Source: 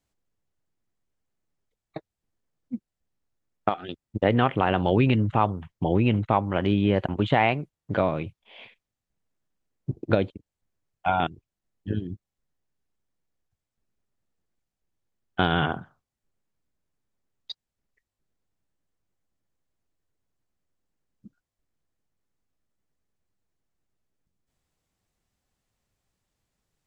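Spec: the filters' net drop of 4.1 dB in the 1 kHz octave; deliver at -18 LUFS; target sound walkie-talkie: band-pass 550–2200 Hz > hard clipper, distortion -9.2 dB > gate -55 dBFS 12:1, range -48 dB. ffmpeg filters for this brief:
-af "highpass=550,lowpass=2200,equalizer=f=1000:t=o:g=-4.5,asoftclip=type=hard:threshold=0.0668,agate=range=0.00398:threshold=0.00178:ratio=12,volume=6.31"

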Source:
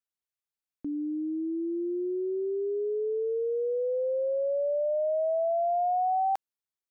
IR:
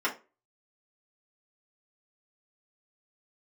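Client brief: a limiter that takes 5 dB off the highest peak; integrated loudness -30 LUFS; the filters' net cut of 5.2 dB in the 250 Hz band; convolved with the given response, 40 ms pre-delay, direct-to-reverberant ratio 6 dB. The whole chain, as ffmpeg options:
-filter_complex "[0:a]equalizer=f=250:t=o:g=-8.5,alimiter=level_in=1.68:limit=0.0631:level=0:latency=1,volume=0.596,asplit=2[s0][s1];[1:a]atrim=start_sample=2205,adelay=40[s2];[s1][s2]afir=irnorm=-1:irlink=0,volume=0.158[s3];[s0][s3]amix=inputs=2:normalize=0,volume=1.33"

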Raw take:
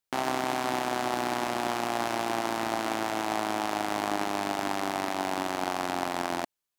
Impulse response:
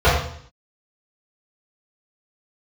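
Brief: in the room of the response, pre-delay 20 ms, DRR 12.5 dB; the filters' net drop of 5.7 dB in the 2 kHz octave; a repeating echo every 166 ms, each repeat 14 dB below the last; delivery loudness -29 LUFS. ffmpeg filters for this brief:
-filter_complex "[0:a]equalizer=f=2000:t=o:g=-7.5,aecho=1:1:166|332:0.2|0.0399,asplit=2[s0][s1];[1:a]atrim=start_sample=2205,adelay=20[s2];[s1][s2]afir=irnorm=-1:irlink=0,volume=0.0133[s3];[s0][s3]amix=inputs=2:normalize=0,volume=1.26"

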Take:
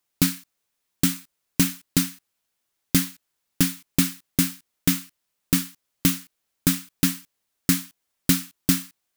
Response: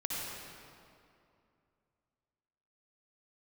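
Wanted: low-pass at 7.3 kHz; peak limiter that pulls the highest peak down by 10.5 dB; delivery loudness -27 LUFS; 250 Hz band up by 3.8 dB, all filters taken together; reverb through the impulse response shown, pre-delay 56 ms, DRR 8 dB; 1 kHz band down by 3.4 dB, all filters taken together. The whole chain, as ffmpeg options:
-filter_complex "[0:a]lowpass=7300,equalizer=f=250:t=o:g=5,equalizer=f=1000:t=o:g=-5,alimiter=limit=0.188:level=0:latency=1,asplit=2[s0][s1];[1:a]atrim=start_sample=2205,adelay=56[s2];[s1][s2]afir=irnorm=-1:irlink=0,volume=0.251[s3];[s0][s3]amix=inputs=2:normalize=0,volume=1.41"

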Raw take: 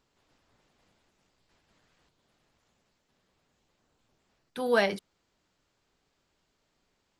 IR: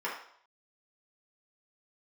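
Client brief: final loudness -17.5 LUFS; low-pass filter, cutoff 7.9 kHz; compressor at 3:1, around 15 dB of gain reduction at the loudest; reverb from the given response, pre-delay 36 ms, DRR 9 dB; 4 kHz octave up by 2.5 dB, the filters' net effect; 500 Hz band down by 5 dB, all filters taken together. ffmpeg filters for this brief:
-filter_complex "[0:a]lowpass=7900,equalizer=f=500:t=o:g=-6,equalizer=f=4000:t=o:g=3.5,acompressor=threshold=0.00794:ratio=3,asplit=2[s0][s1];[1:a]atrim=start_sample=2205,adelay=36[s2];[s1][s2]afir=irnorm=-1:irlink=0,volume=0.158[s3];[s0][s3]amix=inputs=2:normalize=0,volume=18.8"

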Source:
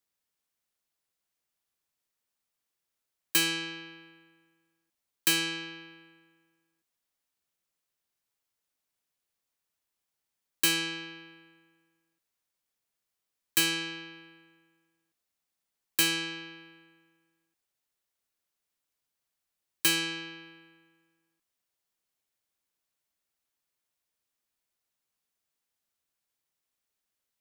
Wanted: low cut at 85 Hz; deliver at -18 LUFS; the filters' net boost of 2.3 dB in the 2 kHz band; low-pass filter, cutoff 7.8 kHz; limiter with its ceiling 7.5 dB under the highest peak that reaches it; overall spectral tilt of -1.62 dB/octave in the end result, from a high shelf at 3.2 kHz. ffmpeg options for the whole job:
-af "highpass=85,lowpass=7800,equalizer=f=2000:t=o:g=4,highshelf=f=3200:g=-3,volume=5.62,alimiter=limit=0.501:level=0:latency=1"

